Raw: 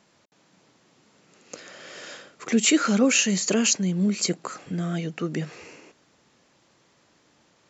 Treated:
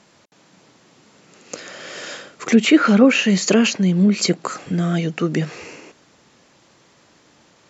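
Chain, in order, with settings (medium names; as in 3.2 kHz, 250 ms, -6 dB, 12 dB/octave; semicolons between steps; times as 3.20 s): low-pass that closes with the level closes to 2.5 kHz, closed at -16.5 dBFS; trim +8 dB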